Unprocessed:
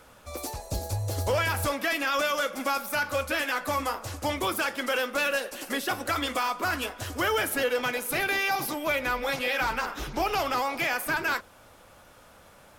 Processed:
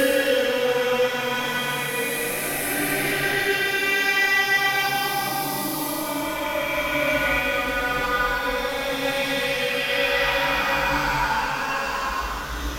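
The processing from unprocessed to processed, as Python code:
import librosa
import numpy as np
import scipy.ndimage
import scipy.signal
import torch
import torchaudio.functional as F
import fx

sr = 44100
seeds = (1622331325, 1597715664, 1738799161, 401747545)

y = fx.chorus_voices(x, sr, voices=6, hz=0.73, base_ms=18, depth_ms=3.7, mix_pct=40)
y = fx.rev_gated(y, sr, seeds[0], gate_ms=160, shape='rising', drr_db=-6.5)
y = fx.paulstretch(y, sr, seeds[1], factor=5.3, window_s=0.25, from_s=7.7)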